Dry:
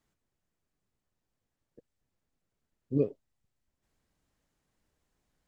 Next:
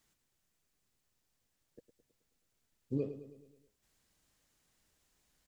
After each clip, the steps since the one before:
high-shelf EQ 2,000 Hz +11 dB
downward compressor 6 to 1, threshold −29 dBFS, peak gain reduction 9 dB
on a send: repeating echo 107 ms, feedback 54%, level −12 dB
on the sum: level −1.5 dB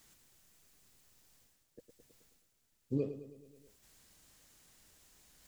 high-shelf EQ 4,800 Hz +4.5 dB
reversed playback
upward compression, threshold −56 dBFS
reversed playback
level +1 dB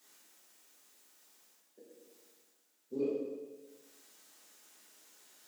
high-pass filter 260 Hz 24 dB per octave
dense smooth reverb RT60 1.2 s, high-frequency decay 0.85×, DRR −8 dB
level −4.5 dB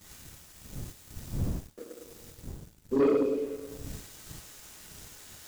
wind on the microphone 140 Hz −56 dBFS
leveller curve on the samples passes 2
level +7 dB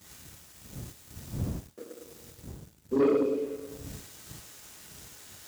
high-pass filter 61 Hz

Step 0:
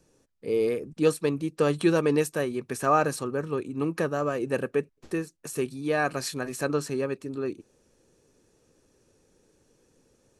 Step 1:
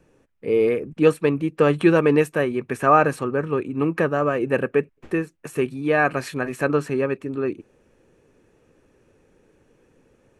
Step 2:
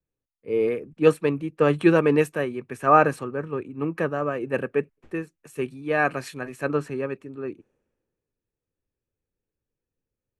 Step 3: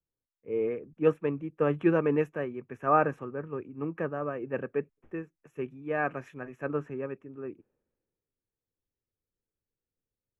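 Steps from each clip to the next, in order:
high shelf with overshoot 3,400 Hz −10 dB, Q 1.5; level +6 dB
multiband upward and downward expander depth 70%; level −4.5 dB
moving average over 10 samples; level −6.5 dB

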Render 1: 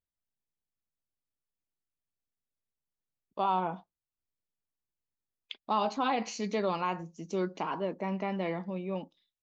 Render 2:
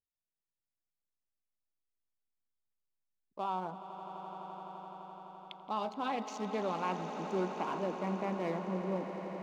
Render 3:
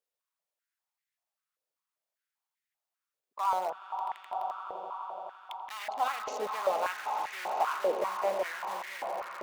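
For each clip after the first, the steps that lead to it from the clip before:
adaptive Wiener filter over 15 samples; speech leveller; echo that builds up and dies away 85 ms, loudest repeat 8, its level −14.5 dB; level −4 dB
in parallel at −8 dB: wrap-around overflow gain 34 dB; on the sum: high-pass on a step sequencer 5.1 Hz 490–1,900 Hz

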